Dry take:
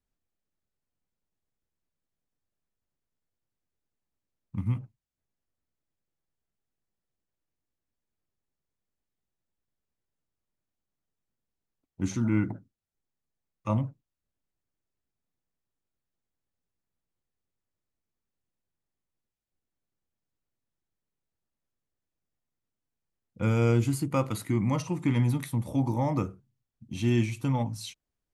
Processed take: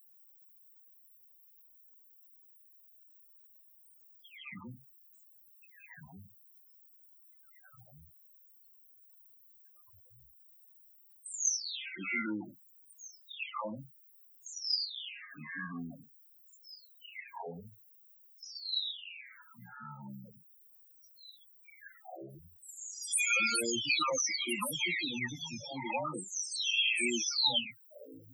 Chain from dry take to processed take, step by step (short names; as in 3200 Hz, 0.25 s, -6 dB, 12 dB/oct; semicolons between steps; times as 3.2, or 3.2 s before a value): spectral delay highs early, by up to 0.8 s; echoes that change speed 0.277 s, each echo -4 st, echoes 3; weighting filter D; added noise white -63 dBFS; tilt +4 dB/oct; loudest bins only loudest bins 16